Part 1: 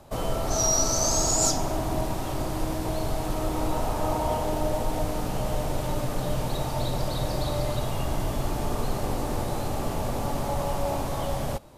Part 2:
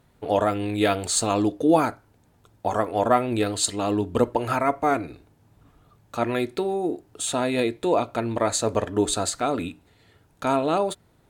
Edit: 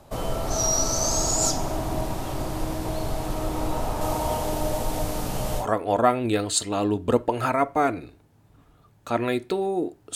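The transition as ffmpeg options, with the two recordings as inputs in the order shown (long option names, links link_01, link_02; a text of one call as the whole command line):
ffmpeg -i cue0.wav -i cue1.wav -filter_complex "[0:a]asettb=1/sr,asplit=3[link_01][link_02][link_03];[link_01]atrim=end=4.014[link_04];[link_02]atrim=start=4.01:end=5.67,asetpts=PTS-STARTPTS,afade=type=in:duration=0.004:curve=qsin,afade=type=out:start_time=1.656:duration=0.004:curve=qsin,highshelf=frequency=3800:gain=6.5[link_05];[link_03]atrim=start=5.666[link_06];[link_04][link_05]acrossfade=duration=0.004:curve1=hsin:curve2=qsin[link_07];[link_07][link_06]acrossfade=duration=0.004:curve1=qsin:curve2=hsin,apad=whole_dur=10.15,atrim=end=10.15,atrim=end=5.67,asetpts=PTS-STARTPTS[link_08];[1:a]atrim=start=2.64:end=7.22,asetpts=PTS-STARTPTS[link_09];[link_08][link_09]acrossfade=duration=0.1:curve1=tri:curve2=tri" out.wav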